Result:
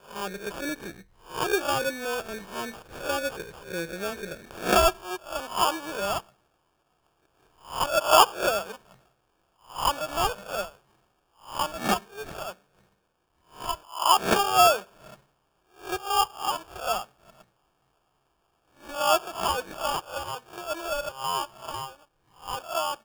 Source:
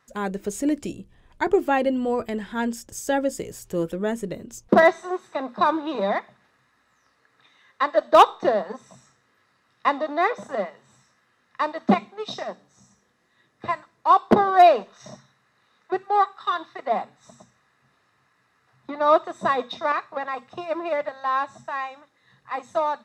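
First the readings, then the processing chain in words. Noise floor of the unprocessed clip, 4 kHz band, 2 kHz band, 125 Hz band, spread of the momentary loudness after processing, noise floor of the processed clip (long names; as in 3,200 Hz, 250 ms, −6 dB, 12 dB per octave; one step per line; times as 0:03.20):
−66 dBFS, +7.5 dB, −2.5 dB, −4.0 dB, 17 LU, −72 dBFS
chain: peak hold with a rise ahead of every peak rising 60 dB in 0.37 s
decimation without filtering 22×
graphic EQ with 15 bands 100 Hz −5 dB, 250 Hz −10 dB, 1,600 Hz +3 dB
level −5.5 dB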